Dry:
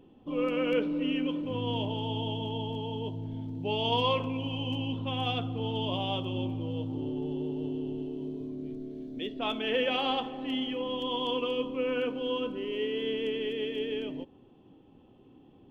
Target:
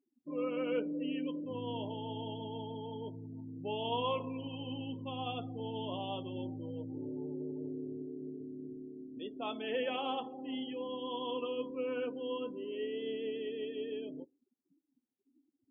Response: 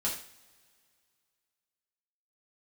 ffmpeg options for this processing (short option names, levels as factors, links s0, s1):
-af "afftdn=nr=35:nf=-39,highpass=f=190:p=1,aemphasis=mode=reproduction:type=75kf,volume=0.562"